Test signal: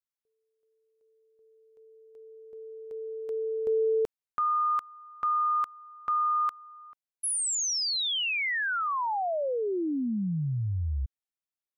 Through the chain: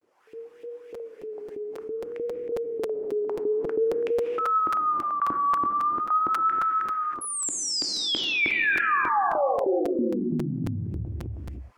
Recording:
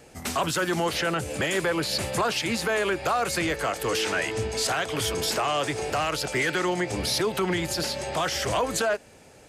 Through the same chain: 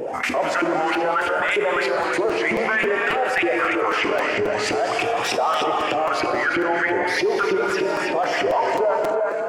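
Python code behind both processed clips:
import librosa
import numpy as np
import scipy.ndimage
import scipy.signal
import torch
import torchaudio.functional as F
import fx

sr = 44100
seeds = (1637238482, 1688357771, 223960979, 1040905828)

y = fx.dereverb_blind(x, sr, rt60_s=0.51)
y = fx.peak_eq(y, sr, hz=3900.0, db=-6.5, octaves=0.36)
y = fx.filter_lfo_bandpass(y, sr, shape='saw_up', hz=3.2, low_hz=310.0, high_hz=2600.0, q=3.4)
y = fx.low_shelf(y, sr, hz=98.0, db=-6.0)
y = y + 10.0 ** (-9.0 / 20.0) * np.pad(y, (int(335 * sr / 1000.0), 0))[:len(y)]
y = fx.rev_gated(y, sr, seeds[0], gate_ms=350, shape='flat', drr_db=3.5)
y = fx.wow_flutter(y, sr, seeds[1], rate_hz=0.54, depth_cents=110.0)
y = fx.buffer_crackle(y, sr, first_s=0.94, period_s=0.27, block=256, kind='repeat')
y = fx.env_flatten(y, sr, amount_pct=70)
y = F.gain(torch.from_numpy(y), 6.5).numpy()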